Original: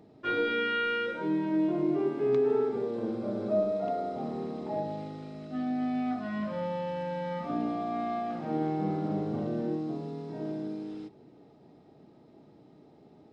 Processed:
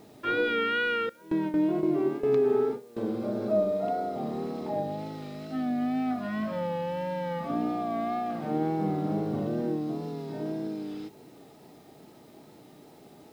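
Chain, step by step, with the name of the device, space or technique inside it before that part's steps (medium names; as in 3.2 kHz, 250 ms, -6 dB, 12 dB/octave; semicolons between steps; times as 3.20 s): 1.09–2.97 s: gate with hold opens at -21 dBFS; noise-reduction cassette on a plain deck (tape noise reduction on one side only encoder only; wow and flutter; white noise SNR 36 dB); trim +2 dB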